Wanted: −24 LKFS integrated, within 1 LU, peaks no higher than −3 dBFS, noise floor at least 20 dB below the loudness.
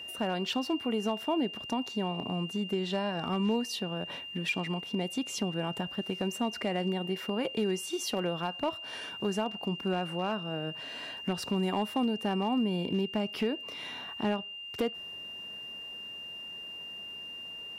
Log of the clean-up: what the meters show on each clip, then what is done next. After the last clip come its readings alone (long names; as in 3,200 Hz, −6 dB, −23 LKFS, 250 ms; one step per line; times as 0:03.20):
share of clipped samples 0.4%; peaks flattened at −22.0 dBFS; interfering tone 2,800 Hz; level of the tone −40 dBFS; integrated loudness −33.0 LKFS; sample peak −22.0 dBFS; target loudness −24.0 LKFS
→ clipped peaks rebuilt −22 dBFS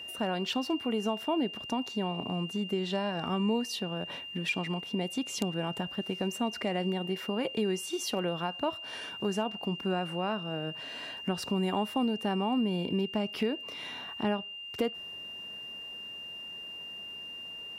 share of clipped samples 0.0%; interfering tone 2,800 Hz; level of the tone −40 dBFS
→ notch filter 2,800 Hz, Q 30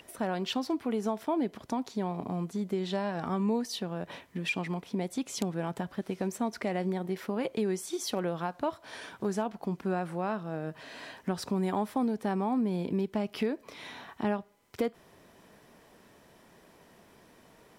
interfering tone none found; integrated loudness −33.0 LKFS; sample peak −13.0 dBFS; target loudness −24.0 LKFS
→ level +9 dB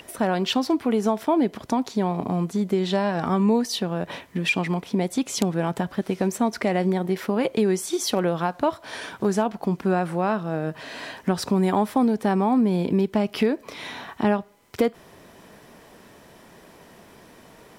integrated loudness −24.0 LKFS; sample peak −4.0 dBFS; background noise floor −50 dBFS